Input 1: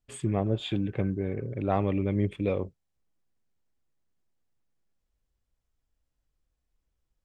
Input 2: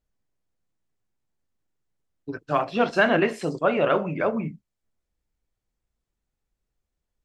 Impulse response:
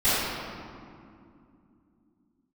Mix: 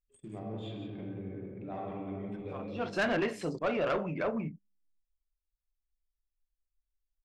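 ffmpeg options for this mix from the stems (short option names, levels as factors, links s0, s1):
-filter_complex "[0:a]bandreject=f=50:t=h:w=6,bandreject=f=100:t=h:w=6,volume=0.133,asplit=4[s0][s1][s2][s3];[s1]volume=0.2[s4];[s2]volume=0.531[s5];[1:a]volume=0.501[s6];[s3]apad=whole_len=319387[s7];[s6][s7]sidechaincompress=threshold=0.00112:ratio=8:attack=21:release=327[s8];[2:a]atrim=start_sample=2205[s9];[s4][s9]afir=irnorm=-1:irlink=0[s10];[s5]aecho=0:1:175:1[s11];[s0][s8][s10][s11]amix=inputs=4:normalize=0,anlmdn=0.000398,asoftclip=type=tanh:threshold=0.0631"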